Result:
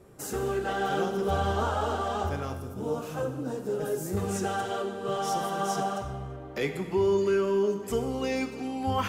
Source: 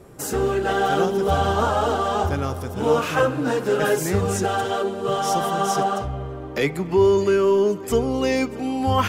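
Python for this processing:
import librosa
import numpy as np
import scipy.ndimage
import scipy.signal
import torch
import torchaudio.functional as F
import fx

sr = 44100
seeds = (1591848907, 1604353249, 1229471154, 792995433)

y = fx.peak_eq(x, sr, hz=2100.0, db=-14.0, octaves=2.4, at=(2.54, 4.17))
y = fx.rev_gated(y, sr, seeds[0], gate_ms=400, shape='falling', drr_db=6.5)
y = y * 10.0 ** (-8.5 / 20.0)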